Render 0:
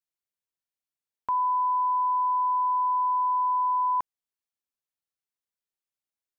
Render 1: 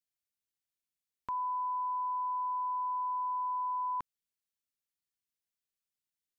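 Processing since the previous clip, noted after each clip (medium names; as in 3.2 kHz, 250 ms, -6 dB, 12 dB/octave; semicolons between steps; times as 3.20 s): peaking EQ 770 Hz -11.5 dB 1.6 oct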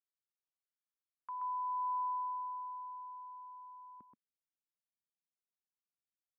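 band-pass sweep 1.2 kHz -> 200 Hz, 1.63–4.23 s; delay 128 ms -4.5 dB; trim -5 dB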